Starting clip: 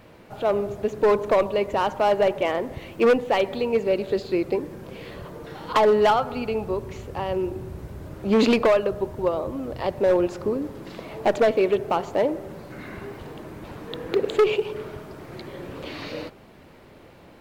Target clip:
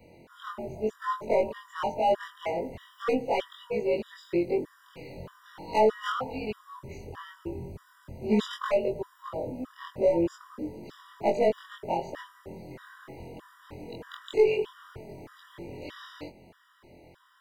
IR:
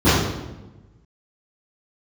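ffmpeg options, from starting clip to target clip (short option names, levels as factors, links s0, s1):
-af "afftfilt=real='re':imag='-im':win_size=2048:overlap=0.75,afftfilt=real='re*gt(sin(2*PI*1.6*pts/sr)*(1-2*mod(floor(b*sr/1024/970),2)),0)':imag='im*gt(sin(2*PI*1.6*pts/sr)*(1-2*mod(floor(b*sr/1024/970),2)),0)':win_size=1024:overlap=0.75"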